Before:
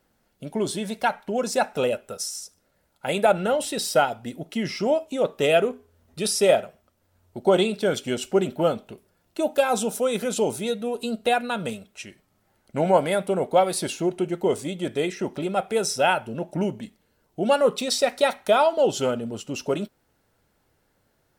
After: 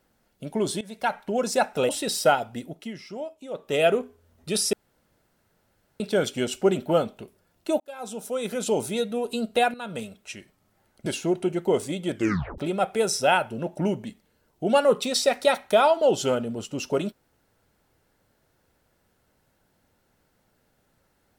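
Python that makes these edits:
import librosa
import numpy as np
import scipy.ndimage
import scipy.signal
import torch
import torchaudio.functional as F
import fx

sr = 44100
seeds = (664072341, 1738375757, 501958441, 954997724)

y = fx.edit(x, sr, fx.fade_in_from(start_s=0.81, length_s=0.37, floor_db=-18.5),
    fx.cut(start_s=1.89, length_s=1.7),
    fx.fade_down_up(start_s=4.24, length_s=1.39, db=-12.5, fade_s=0.42),
    fx.room_tone_fill(start_s=6.43, length_s=1.27),
    fx.fade_in_span(start_s=9.5, length_s=1.05),
    fx.fade_in_from(start_s=11.44, length_s=0.42, floor_db=-13.0),
    fx.cut(start_s=12.76, length_s=1.06),
    fx.tape_stop(start_s=14.91, length_s=0.43), tone=tone)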